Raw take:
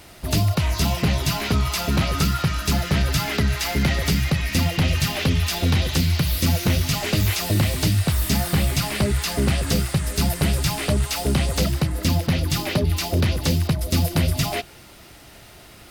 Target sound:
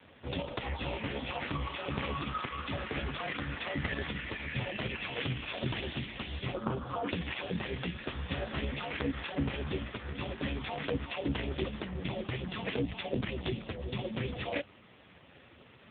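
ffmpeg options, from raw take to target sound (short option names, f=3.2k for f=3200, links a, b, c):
-filter_complex "[0:a]afreqshift=-130,asettb=1/sr,asplit=3[a][b][c];[a]atrim=end=6.544[d];[b]atrim=start=6.54:end=7.08,asetpts=PTS-STARTPTS,afade=t=in:d=0.004:c=qsin,afade=t=out:st=0.536:d=0.004:c=qsin,highshelf=f=1.6k:t=q:w=3:g=-10.5[e];[c]atrim=start=7.076[f];[d][e]acrossfade=d=0.004:c1=hsin:c2=qsin[g];[g][f]acrossfade=d=0.004:c1=qsin:c2=hsin,volume=-4dB" -ar 8000 -c:a libopencore_amrnb -b:a 4750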